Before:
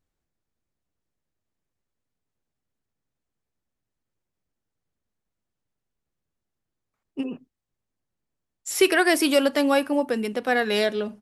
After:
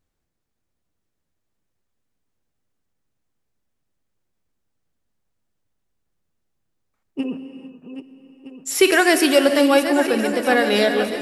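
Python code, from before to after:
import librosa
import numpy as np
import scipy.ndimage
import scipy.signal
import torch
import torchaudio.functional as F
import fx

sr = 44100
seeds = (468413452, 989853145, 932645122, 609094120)

y = fx.reverse_delay_fb(x, sr, ms=633, feedback_pct=62, wet_db=-10.0)
y = fx.rev_gated(y, sr, seeds[0], gate_ms=480, shape='flat', drr_db=9.0)
y = F.gain(torch.from_numpy(y), 4.0).numpy()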